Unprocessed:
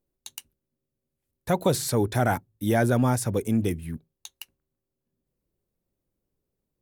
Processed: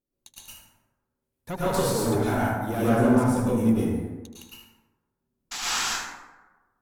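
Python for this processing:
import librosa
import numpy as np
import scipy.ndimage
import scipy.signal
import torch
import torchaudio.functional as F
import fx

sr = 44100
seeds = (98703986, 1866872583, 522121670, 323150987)

p1 = fx.tilt_shelf(x, sr, db=4.5, hz=1200.0, at=(2.77, 3.26))
p2 = fx.level_steps(p1, sr, step_db=20, at=(3.78, 4.3))
p3 = fx.spec_paint(p2, sr, seeds[0], shape='noise', start_s=5.51, length_s=0.32, low_hz=690.0, high_hz=7900.0, level_db=-25.0)
p4 = fx.tube_stage(p3, sr, drive_db=19.0, bias=0.65)
p5 = fx.peak_eq(p4, sr, hz=260.0, db=6.0, octaves=0.49)
p6 = fx.hum_notches(p5, sr, base_hz=60, count=2)
p7 = p6 + fx.echo_single(p6, sr, ms=76, db=-11.0, dry=0)
p8 = fx.rev_plate(p7, sr, seeds[1], rt60_s=1.2, hf_ratio=0.45, predelay_ms=95, drr_db=-8.5)
p9 = fx.band_squash(p8, sr, depth_pct=70, at=(1.74, 2.15))
y = F.gain(torch.from_numpy(p9), -5.5).numpy()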